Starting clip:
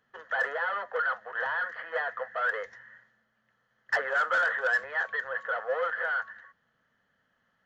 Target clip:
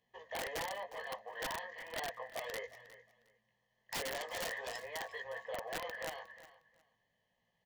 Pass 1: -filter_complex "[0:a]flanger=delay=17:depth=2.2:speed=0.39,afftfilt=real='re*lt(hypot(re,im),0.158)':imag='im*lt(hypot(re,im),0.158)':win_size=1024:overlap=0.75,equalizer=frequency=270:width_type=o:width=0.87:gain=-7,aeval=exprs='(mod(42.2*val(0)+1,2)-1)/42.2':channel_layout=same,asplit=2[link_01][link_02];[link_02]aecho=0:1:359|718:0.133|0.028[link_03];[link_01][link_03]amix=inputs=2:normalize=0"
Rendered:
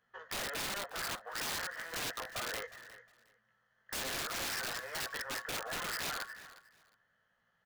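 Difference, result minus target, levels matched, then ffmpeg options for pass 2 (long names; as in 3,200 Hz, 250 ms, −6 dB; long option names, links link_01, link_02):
1,000 Hz band −3.0 dB
-filter_complex "[0:a]flanger=delay=17:depth=2.2:speed=0.39,afftfilt=real='re*lt(hypot(re,im),0.158)':imag='im*lt(hypot(re,im),0.158)':win_size=1024:overlap=0.75,asuperstop=centerf=1400:order=4:qfactor=1.6,equalizer=frequency=270:width_type=o:width=0.87:gain=-7,aeval=exprs='(mod(42.2*val(0)+1,2)-1)/42.2':channel_layout=same,asplit=2[link_01][link_02];[link_02]aecho=0:1:359|718:0.133|0.028[link_03];[link_01][link_03]amix=inputs=2:normalize=0"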